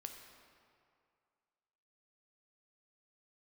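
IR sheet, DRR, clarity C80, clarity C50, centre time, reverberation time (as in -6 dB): 4.0 dB, 6.5 dB, 5.5 dB, 48 ms, 2.3 s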